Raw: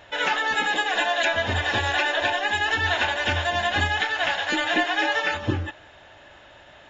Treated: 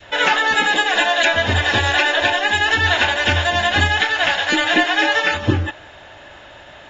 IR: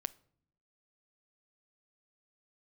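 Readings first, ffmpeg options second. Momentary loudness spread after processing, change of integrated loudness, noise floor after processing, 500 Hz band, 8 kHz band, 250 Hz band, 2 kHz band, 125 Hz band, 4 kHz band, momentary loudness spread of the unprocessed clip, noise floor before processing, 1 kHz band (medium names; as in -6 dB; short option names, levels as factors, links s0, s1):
2 LU, +7.0 dB, -41 dBFS, +6.0 dB, no reading, +7.5 dB, +7.0 dB, +8.0 dB, +7.5 dB, 2 LU, -49 dBFS, +5.5 dB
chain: -af "adynamicequalizer=threshold=0.0251:dfrequency=840:dqfactor=0.78:tfrequency=840:tqfactor=0.78:attack=5:release=100:ratio=0.375:range=1.5:mode=cutabove:tftype=bell,volume=2.51"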